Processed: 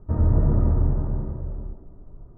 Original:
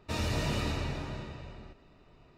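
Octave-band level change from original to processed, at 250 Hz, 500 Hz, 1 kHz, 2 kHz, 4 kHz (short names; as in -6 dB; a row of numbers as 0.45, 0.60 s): +8.5 dB, +5.0 dB, 0.0 dB, under -10 dB, under -40 dB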